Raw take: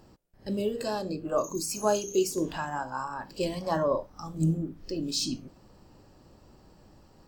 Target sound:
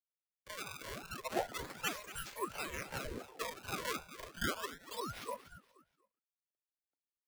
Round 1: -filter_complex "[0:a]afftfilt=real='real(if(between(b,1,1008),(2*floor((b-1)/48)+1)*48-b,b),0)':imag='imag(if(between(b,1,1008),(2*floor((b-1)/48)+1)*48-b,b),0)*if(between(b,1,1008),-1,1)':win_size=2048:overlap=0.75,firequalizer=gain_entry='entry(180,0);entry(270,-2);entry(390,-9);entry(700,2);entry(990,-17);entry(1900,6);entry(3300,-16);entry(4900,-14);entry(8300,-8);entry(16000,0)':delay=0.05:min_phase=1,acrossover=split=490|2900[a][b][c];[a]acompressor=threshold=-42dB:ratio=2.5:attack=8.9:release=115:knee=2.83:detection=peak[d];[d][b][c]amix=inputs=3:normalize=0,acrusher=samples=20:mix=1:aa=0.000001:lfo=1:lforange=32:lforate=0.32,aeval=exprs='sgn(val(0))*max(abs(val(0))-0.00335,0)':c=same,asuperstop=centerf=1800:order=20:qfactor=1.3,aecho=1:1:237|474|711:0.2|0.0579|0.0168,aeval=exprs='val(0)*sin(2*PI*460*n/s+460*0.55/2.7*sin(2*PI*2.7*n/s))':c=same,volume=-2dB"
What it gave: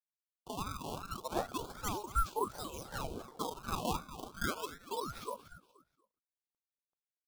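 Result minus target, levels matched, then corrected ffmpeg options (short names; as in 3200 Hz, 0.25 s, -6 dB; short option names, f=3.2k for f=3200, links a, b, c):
2000 Hz band -6.0 dB
-filter_complex "[0:a]afftfilt=real='real(if(between(b,1,1008),(2*floor((b-1)/48)+1)*48-b,b),0)':imag='imag(if(between(b,1,1008),(2*floor((b-1)/48)+1)*48-b,b),0)*if(between(b,1,1008),-1,1)':win_size=2048:overlap=0.75,firequalizer=gain_entry='entry(180,0);entry(270,-2);entry(390,-9);entry(700,2);entry(990,-17);entry(1900,6);entry(3300,-16);entry(4900,-14);entry(8300,-8);entry(16000,0)':delay=0.05:min_phase=1,acrossover=split=490|2900[a][b][c];[a]acompressor=threshold=-42dB:ratio=2.5:attack=8.9:release=115:knee=2.83:detection=peak[d];[d][b][c]amix=inputs=3:normalize=0,acrusher=samples=20:mix=1:aa=0.000001:lfo=1:lforange=32:lforate=0.32,aeval=exprs='sgn(val(0))*max(abs(val(0))-0.00335,0)':c=same,asuperstop=centerf=490:order=20:qfactor=1.3,aecho=1:1:237|474|711:0.2|0.0579|0.0168,aeval=exprs='val(0)*sin(2*PI*460*n/s+460*0.55/2.7*sin(2*PI*2.7*n/s))':c=same,volume=-2dB"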